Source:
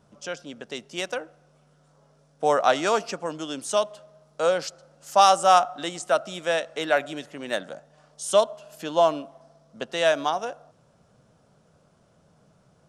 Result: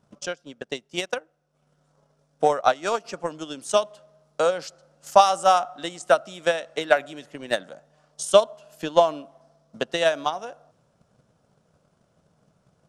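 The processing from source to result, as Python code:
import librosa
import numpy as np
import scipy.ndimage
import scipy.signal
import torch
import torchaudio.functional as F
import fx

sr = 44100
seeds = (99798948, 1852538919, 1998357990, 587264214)

y = fx.transient(x, sr, attack_db=12, sustain_db=fx.steps((0.0, -9.0), (3.04, 2.0)))
y = y * 10.0 ** (-5.5 / 20.0)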